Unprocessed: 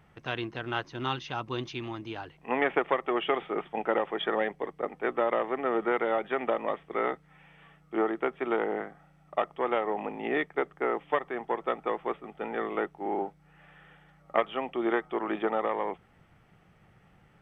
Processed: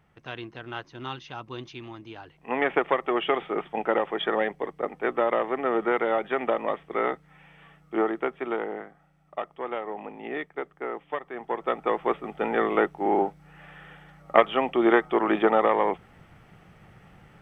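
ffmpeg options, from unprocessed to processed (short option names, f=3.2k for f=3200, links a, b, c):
-af "volume=15dB,afade=t=in:st=2.22:d=0.54:silence=0.446684,afade=t=out:st=7.98:d=0.86:silence=0.446684,afade=t=in:st=11.27:d=1.01:silence=0.251189"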